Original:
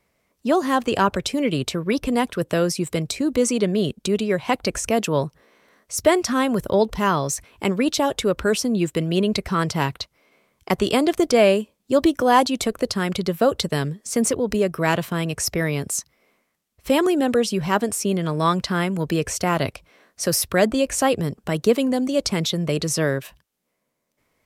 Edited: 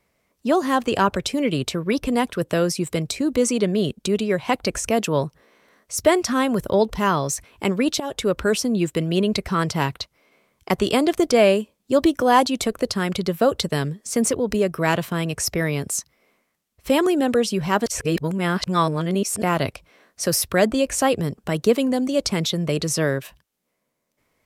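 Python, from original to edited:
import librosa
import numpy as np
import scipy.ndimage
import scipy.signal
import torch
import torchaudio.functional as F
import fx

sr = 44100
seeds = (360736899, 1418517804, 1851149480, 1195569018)

y = fx.edit(x, sr, fx.fade_in_from(start_s=8.0, length_s=0.36, curve='qsin', floor_db=-14.5),
    fx.reverse_span(start_s=17.86, length_s=1.56), tone=tone)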